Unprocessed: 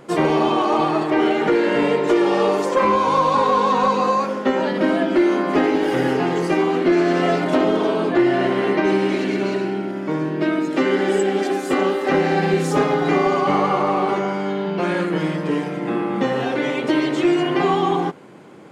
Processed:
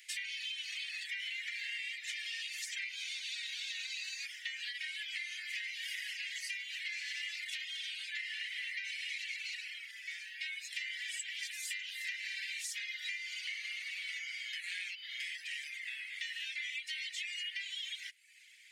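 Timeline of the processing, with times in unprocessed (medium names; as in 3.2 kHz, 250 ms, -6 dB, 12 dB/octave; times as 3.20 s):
14.53–15.20 s: reverse
whole clip: reverb removal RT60 0.65 s; steep high-pass 1.9 kHz 72 dB/octave; compression, threshold -39 dBFS; trim +1 dB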